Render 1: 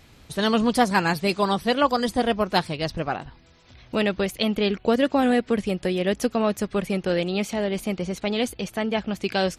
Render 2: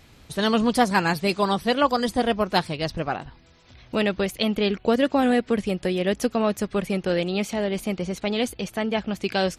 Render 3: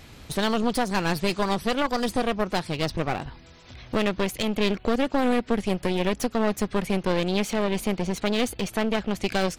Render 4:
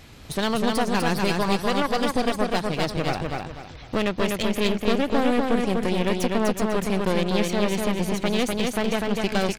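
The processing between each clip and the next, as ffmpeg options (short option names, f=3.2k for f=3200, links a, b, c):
-af anull
-filter_complex "[0:a]asplit=2[a][b];[b]acompressor=threshold=-29dB:ratio=6,volume=-1.5dB[c];[a][c]amix=inputs=2:normalize=0,alimiter=limit=-10.5dB:level=0:latency=1:release=221,aeval=exprs='clip(val(0),-1,0.0251)':c=same"
-af "aecho=1:1:248|496|744|992:0.708|0.227|0.0725|0.0232"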